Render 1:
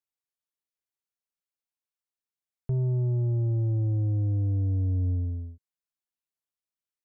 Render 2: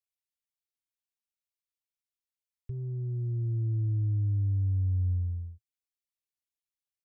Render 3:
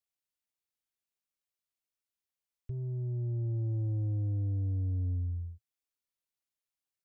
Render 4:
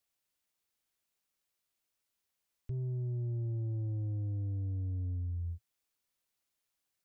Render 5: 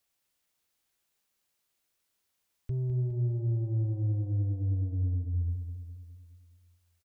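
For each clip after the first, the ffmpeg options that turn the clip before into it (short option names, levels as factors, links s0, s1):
-af "firequalizer=gain_entry='entry(110,0);entry(170,-30);entry(330,-6);entry(640,-28);entry(950,-18);entry(2200,-2)':delay=0.05:min_phase=1,volume=0.841"
-af "asoftclip=type=tanh:threshold=0.0376"
-af "alimiter=level_in=6.31:limit=0.0631:level=0:latency=1,volume=0.158,volume=2.24"
-af "aecho=1:1:206|412|618|824|1030|1236|1442:0.376|0.207|0.114|0.0625|0.0344|0.0189|0.0104,volume=1.78"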